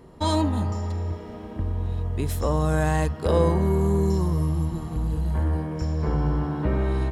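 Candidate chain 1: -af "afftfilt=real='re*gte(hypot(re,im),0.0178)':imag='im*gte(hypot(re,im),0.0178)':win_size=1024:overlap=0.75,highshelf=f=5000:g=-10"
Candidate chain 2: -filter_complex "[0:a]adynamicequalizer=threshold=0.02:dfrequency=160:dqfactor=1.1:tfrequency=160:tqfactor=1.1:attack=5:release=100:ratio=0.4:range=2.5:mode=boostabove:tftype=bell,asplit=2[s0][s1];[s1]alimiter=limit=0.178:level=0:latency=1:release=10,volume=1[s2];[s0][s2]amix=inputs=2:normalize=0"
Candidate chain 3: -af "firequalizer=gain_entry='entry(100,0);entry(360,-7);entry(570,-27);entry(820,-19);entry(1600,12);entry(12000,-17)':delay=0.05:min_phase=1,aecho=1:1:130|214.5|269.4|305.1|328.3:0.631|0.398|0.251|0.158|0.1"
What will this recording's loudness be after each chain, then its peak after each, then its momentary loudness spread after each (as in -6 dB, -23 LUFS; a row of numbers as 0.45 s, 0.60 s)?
-25.0 LUFS, -17.5 LUFS, -24.5 LUFS; -7.5 dBFS, -3.5 dBFS, -9.5 dBFS; 8 LU, 7 LU, 10 LU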